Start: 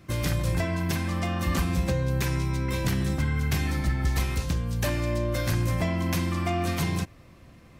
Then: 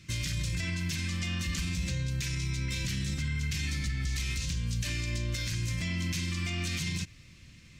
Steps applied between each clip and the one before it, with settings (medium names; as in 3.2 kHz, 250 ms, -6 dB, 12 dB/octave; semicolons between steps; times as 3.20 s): FFT filter 160 Hz 0 dB, 810 Hz -18 dB, 2.3 kHz +6 dB, 7 kHz +10 dB, 12 kHz -4 dB; peak limiter -22.5 dBFS, peak gain reduction 10.5 dB; trim -1.5 dB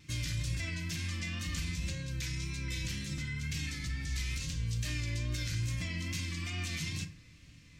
wow and flutter 45 cents; FDN reverb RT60 0.55 s, low-frequency decay 0.85×, high-frequency decay 0.5×, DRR 5 dB; trim -4.5 dB